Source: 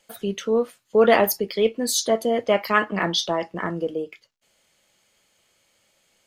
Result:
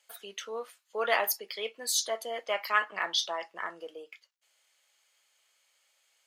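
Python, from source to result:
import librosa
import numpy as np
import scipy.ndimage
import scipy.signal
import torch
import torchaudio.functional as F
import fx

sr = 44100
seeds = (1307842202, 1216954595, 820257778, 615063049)

y = scipy.signal.sosfilt(scipy.signal.butter(2, 890.0, 'highpass', fs=sr, output='sos'), x)
y = F.gain(torch.from_numpy(y), -5.0).numpy()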